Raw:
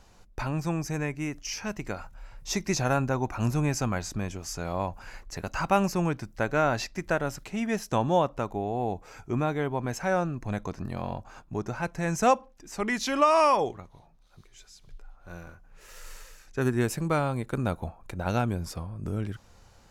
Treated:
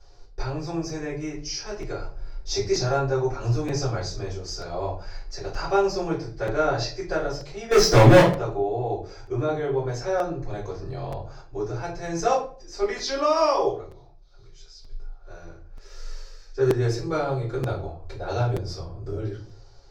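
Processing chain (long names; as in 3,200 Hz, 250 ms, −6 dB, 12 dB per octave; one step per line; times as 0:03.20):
0:01.96–0:02.59: sub-octave generator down 1 octave, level −2 dB
drawn EQ curve 130 Hz 0 dB, 230 Hz −15 dB, 370 Hz +9 dB, 650 Hz +3 dB, 1,100 Hz −1 dB, 1,700 Hz −2 dB, 2,600 Hz −5 dB, 4,900 Hz +11 dB, 9,500 Hz −15 dB
0:07.71–0:08.21: leveller curve on the samples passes 5
rectangular room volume 31 cubic metres, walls mixed, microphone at 2.3 metres
regular buffer underruns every 0.93 s, samples 256, repeat, from 0:00.89
level −14 dB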